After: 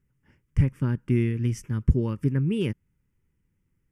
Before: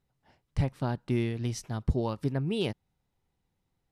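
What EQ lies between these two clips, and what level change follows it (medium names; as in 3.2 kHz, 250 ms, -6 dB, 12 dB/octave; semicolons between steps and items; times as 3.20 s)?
peaking EQ 1.1 kHz -6.5 dB 1.5 oct; treble shelf 4.8 kHz -6 dB; static phaser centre 1.7 kHz, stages 4; +7.5 dB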